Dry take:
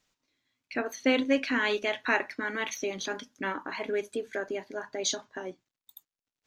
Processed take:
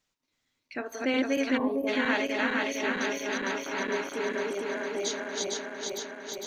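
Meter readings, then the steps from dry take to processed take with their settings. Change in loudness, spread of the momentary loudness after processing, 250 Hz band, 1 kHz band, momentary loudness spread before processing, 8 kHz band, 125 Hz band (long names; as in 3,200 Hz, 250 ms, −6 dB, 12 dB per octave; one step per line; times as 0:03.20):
+1.0 dB, 8 LU, +2.5 dB, +1.5 dB, 10 LU, +1.0 dB, can't be measured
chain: feedback delay that plays each chunk backwards 228 ms, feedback 84%, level −1 dB
gain on a spectral selection 0:01.57–0:01.87, 1,200–9,800 Hz −27 dB
level −4 dB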